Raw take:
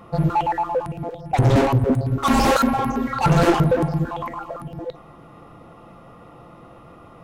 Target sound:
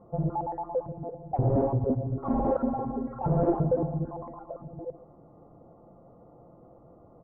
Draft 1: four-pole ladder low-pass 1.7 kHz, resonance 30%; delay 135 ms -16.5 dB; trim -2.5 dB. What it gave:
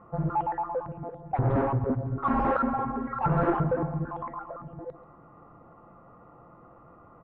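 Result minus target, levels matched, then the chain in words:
2 kHz band +18.0 dB
four-pole ladder low-pass 850 Hz, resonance 30%; delay 135 ms -16.5 dB; trim -2.5 dB

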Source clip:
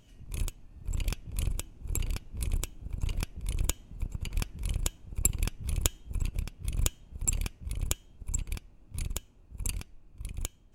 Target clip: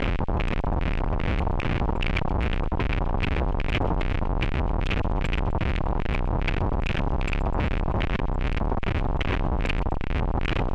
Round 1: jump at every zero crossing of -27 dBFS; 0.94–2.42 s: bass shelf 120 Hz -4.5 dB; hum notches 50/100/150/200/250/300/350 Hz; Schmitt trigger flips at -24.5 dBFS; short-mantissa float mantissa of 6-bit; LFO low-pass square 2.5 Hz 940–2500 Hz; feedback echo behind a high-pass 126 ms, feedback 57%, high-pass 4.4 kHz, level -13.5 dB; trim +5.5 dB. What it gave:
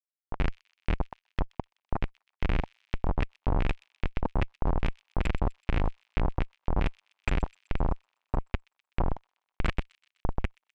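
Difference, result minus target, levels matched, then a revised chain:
Schmitt trigger: distortion +9 dB
jump at every zero crossing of -27 dBFS; 0.94–2.42 s: bass shelf 120 Hz -4.5 dB; hum notches 50/100/150/200/250/300/350 Hz; Schmitt trigger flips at -33 dBFS; short-mantissa float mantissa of 6-bit; LFO low-pass square 2.5 Hz 940–2500 Hz; feedback echo behind a high-pass 126 ms, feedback 57%, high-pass 4.4 kHz, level -13.5 dB; trim +5.5 dB

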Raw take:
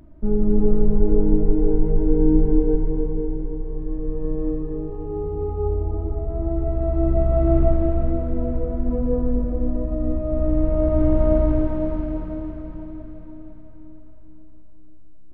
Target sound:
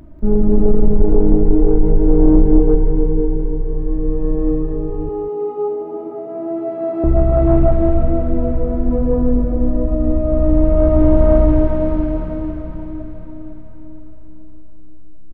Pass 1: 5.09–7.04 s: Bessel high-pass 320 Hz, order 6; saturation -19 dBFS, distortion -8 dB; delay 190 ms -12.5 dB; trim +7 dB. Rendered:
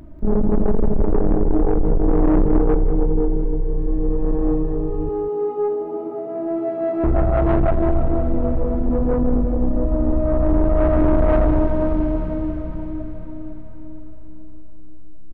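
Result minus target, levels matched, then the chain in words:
saturation: distortion +10 dB
5.09–7.04 s: Bessel high-pass 320 Hz, order 6; saturation -9 dBFS, distortion -18 dB; delay 190 ms -12.5 dB; trim +7 dB

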